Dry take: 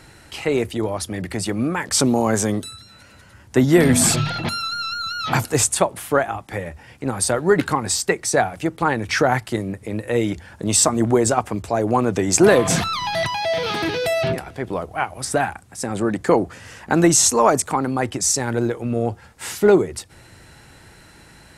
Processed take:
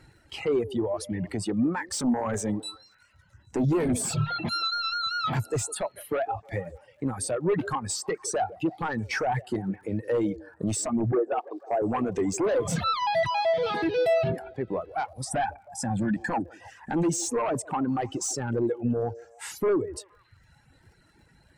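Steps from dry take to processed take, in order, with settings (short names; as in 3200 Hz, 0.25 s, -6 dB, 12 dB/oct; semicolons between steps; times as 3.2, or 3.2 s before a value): reverb removal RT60 1.1 s; 11.12–11.82 elliptic band-pass 350–1600 Hz, stop band 40 dB; 15.31–16.4 comb 1.2 ms, depth 95%; limiter -9.5 dBFS, peak gain reduction 7 dB; sine folder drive 6 dB, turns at -9.5 dBFS; compressor 2:1, threshold -21 dBFS, peak gain reduction 5.5 dB; crackle 72/s -28 dBFS; on a send: delay with a stepping band-pass 0.156 s, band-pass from 450 Hz, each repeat 0.7 oct, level -10 dB; on the sum: spectral expander 1.5:1; gain -7 dB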